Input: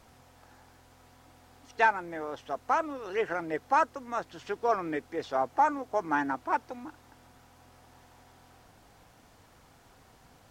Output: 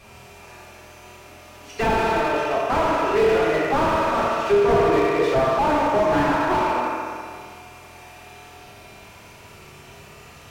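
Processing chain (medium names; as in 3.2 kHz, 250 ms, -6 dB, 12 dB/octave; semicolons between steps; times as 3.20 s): peaking EQ 2.5 kHz +11.5 dB 0.41 oct; reverberation RT60 2.0 s, pre-delay 3 ms, DRR -7.5 dB; slew-rate limiter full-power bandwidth 56 Hz; trim +5.5 dB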